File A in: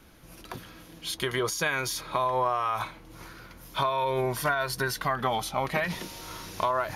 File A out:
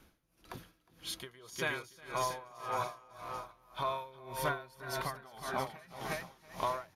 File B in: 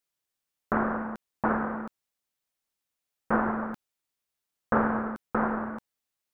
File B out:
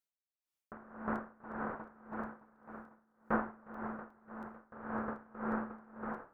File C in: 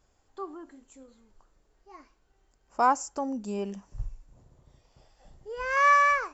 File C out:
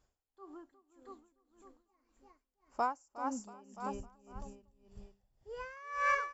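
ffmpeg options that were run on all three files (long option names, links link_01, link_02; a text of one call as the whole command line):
ffmpeg -i in.wav -filter_complex "[0:a]asplit=2[link_01][link_02];[link_02]aecho=0:1:360|684|975.6|1238|1474:0.631|0.398|0.251|0.158|0.1[link_03];[link_01][link_03]amix=inputs=2:normalize=0,aeval=exprs='val(0)*pow(10,-23*(0.5-0.5*cos(2*PI*1.8*n/s))/20)':channel_layout=same,volume=-6.5dB" out.wav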